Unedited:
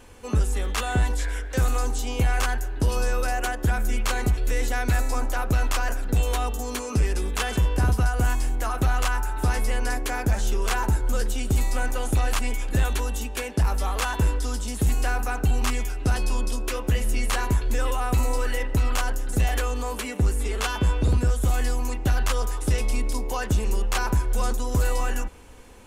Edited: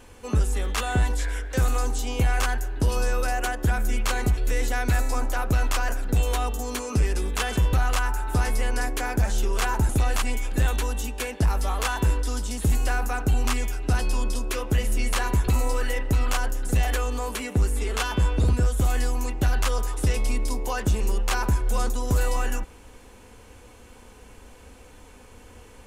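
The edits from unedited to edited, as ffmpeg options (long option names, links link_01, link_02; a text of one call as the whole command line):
ffmpeg -i in.wav -filter_complex "[0:a]asplit=4[link_01][link_02][link_03][link_04];[link_01]atrim=end=7.732[link_05];[link_02]atrim=start=8.818:end=10.982[link_06];[link_03]atrim=start=12.058:end=17.652[link_07];[link_04]atrim=start=18.118[link_08];[link_05][link_06]acrossfade=duration=0.004:curve1=hsin:curve2=hsin[link_09];[link_09][link_07]acrossfade=duration=0.004:curve1=hsin:curve2=hsin[link_10];[link_10][link_08]acrossfade=duration=0.004:curve1=hsin:curve2=hsin" out.wav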